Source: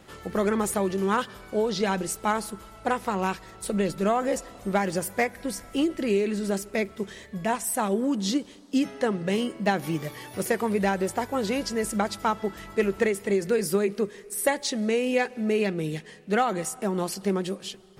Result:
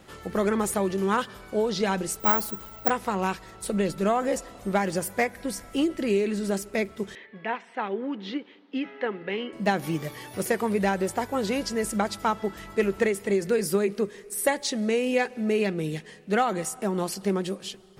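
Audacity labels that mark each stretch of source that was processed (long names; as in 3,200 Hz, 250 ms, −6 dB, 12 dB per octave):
2.200000	2.900000	bad sample-rate conversion rate divided by 2×, down filtered, up zero stuff
7.150000	9.530000	loudspeaker in its box 360–3,100 Hz, peaks and dips at 620 Hz −9 dB, 1,100 Hz −4 dB, 2,100 Hz +3 dB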